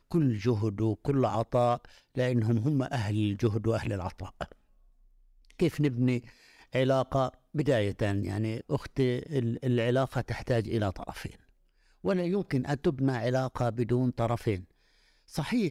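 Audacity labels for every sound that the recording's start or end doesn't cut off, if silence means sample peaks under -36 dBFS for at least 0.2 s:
2.170000	4.520000	sound
5.500000	6.190000	sound
6.750000	7.290000	sound
7.550000	11.300000	sound
12.040000	14.590000	sound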